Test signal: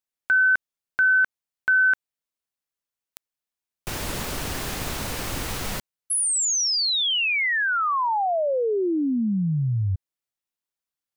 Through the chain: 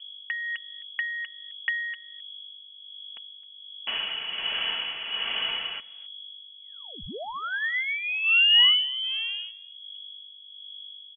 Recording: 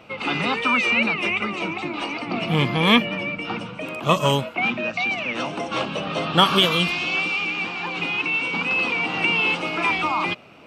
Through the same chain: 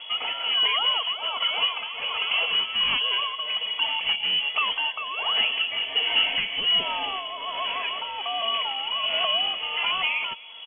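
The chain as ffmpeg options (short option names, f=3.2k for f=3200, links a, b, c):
-filter_complex "[0:a]aecho=1:1:4.4:0.36,acrossover=split=690[a][b];[a]asoftclip=type=hard:threshold=-20.5dB[c];[b]acompressor=threshold=-28dB:ratio=6:attack=39:release=301:knee=1:detection=peak[d];[c][d]amix=inputs=2:normalize=0,highpass=f=460:t=q:w=4.9,asoftclip=type=tanh:threshold=-13dB,aeval=exprs='val(0)+0.00891*(sin(2*PI*50*n/s)+sin(2*PI*2*50*n/s)/2+sin(2*PI*3*50*n/s)/3+sin(2*PI*4*50*n/s)/4+sin(2*PI*5*50*n/s)/5)':c=same,tremolo=f=1.3:d=0.53,asplit=2[e][f];[f]aecho=0:1:263:0.075[g];[e][g]amix=inputs=2:normalize=0,lowpass=f=2.9k:t=q:w=0.5098,lowpass=f=2.9k:t=q:w=0.6013,lowpass=f=2.9k:t=q:w=0.9,lowpass=f=2.9k:t=q:w=2.563,afreqshift=-3400"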